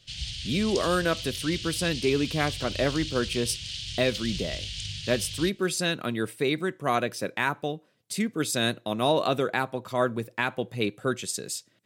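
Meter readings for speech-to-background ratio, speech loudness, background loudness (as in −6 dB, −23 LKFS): 6.0 dB, −28.0 LKFS, −34.0 LKFS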